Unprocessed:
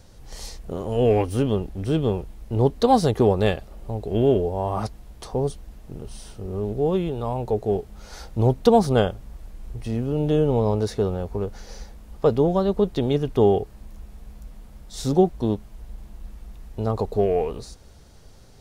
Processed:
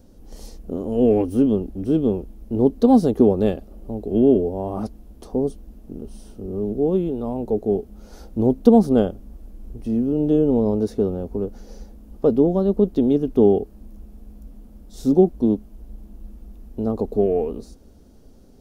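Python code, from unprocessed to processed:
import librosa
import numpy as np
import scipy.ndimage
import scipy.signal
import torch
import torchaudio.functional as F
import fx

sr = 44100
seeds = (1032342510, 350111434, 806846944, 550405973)

y = fx.graphic_eq_10(x, sr, hz=(125, 250, 1000, 2000, 4000, 8000), db=(-9, 11, -6, -10, -7, -7))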